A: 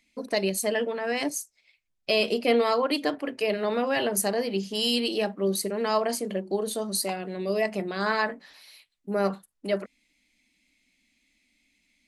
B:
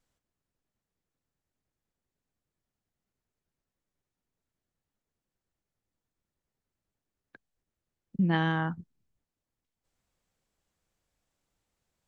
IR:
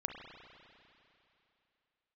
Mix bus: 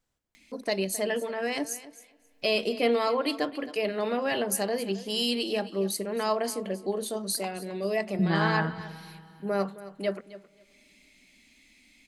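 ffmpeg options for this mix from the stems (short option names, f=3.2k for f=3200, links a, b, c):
-filter_complex "[0:a]acompressor=mode=upward:threshold=-45dB:ratio=2.5,adelay=350,volume=-3dB,asplit=3[a][b][c];[b]volume=-23dB[d];[c]volume=-16dB[e];[1:a]volume=-3.5dB,asplit=2[f][g];[g]volume=-4.5dB[h];[2:a]atrim=start_sample=2205[i];[d][h]amix=inputs=2:normalize=0[j];[j][i]afir=irnorm=-1:irlink=0[k];[e]aecho=0:1:266|532|798:1|0.16|0.0256[l];[a][f][k][l]amix=inputs=4:normalize=0"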